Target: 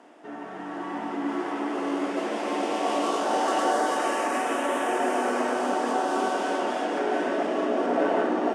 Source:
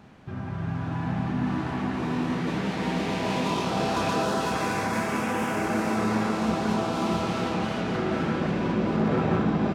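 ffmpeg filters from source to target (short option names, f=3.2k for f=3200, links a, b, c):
-af "highpass=f=270:w=0.5412,highpass=f=270:w=1.3066,equalizer=f=270:t=q:w=4:g=6,equalizer=f=580:t=q:w=4:g=10,equalizer=f=2k:t=q:w=4:g=-3,equalizer=f=3.6k:t=q:w=4:g=-9,equalizer=f=7.9k:t=q:w=4:g=5,lowpass=f=9.7k:w=0.5412,lowpass=f=9.7k:w=1.3066,asetrate=50274,aresample=44100"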